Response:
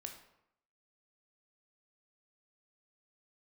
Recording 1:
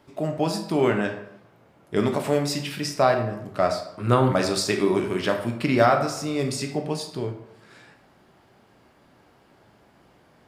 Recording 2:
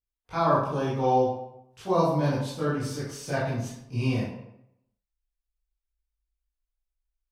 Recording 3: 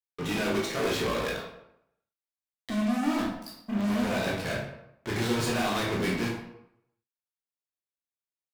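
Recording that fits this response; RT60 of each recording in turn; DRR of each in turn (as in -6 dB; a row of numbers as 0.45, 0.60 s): 1; 0.80, 0.80, 0.80 s; 3.5, -11.0, -3.5 dB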